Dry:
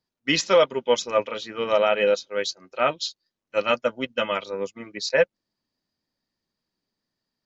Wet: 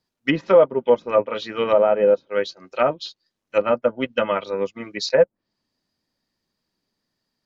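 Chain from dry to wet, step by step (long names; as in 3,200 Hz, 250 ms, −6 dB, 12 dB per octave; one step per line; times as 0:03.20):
treble cut that deepens with the level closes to 890 Hz, closed at −19 dBFS
level +5 dB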